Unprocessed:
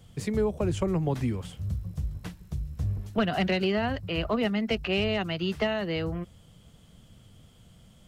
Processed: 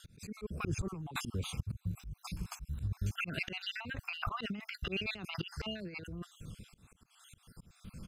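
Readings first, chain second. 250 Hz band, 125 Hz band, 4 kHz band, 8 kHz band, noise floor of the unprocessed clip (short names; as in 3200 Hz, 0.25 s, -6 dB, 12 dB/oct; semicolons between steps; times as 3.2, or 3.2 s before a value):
-14.0 dB, -8.5 dB, -7.0 dB, n/a, -56 dBFS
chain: random spectral dropouts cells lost 50%; auto swell 0.334 s; low shelf 400 Hz -6 dB; rotary speaker horn 0.65 Hz; negative-ratio compressor -47 dBFS, ratio -1; comb 0.8 ms, depth 56%; gain +7 dB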